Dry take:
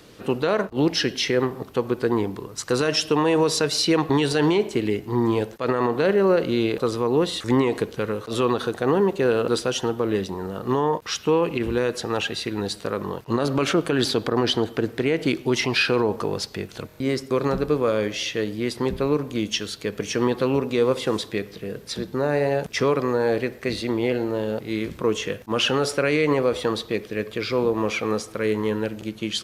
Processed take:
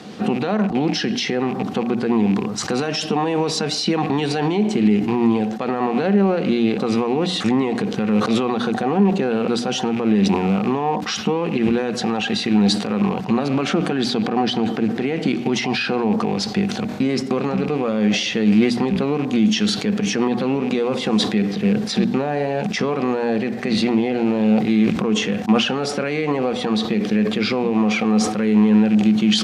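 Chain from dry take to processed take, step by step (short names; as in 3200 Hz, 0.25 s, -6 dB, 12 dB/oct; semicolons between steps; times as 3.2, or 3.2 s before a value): rattling part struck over -33 dBFS, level -28 dBFS; LPF 6600 Hz 12 dB/oct; notches 60/120/180/240/300 Hz; compressor, threshold -25 dBFS, peak gain reduction 10 dB; limiter -22.5 dBFS, peak gain reduction 9.5 dB; HPF 120 Hz; small resonant body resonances 210/750 Hz, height 16 dB, ringing for 85 ms; sustainer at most 70 dB/s; gain +8.5 dB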